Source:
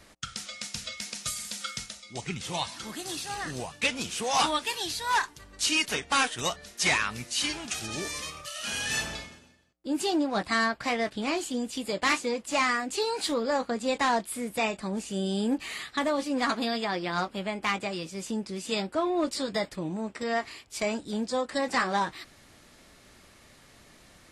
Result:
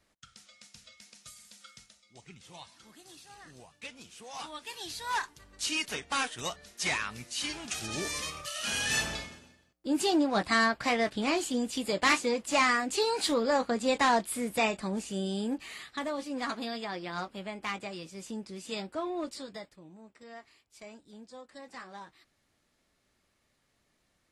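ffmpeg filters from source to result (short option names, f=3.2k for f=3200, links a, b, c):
-af "volume=0.5dB,afade=t=in:st=4.49:d=0.52:silence=0.281838,afade=t=in:st=7.39:d=0.78:silence=0.473151,afade=t=out:st=14.61:d=1.04:silence=0.421697,afade=t=out:st=19.11:d=0.65:silence=0.251189"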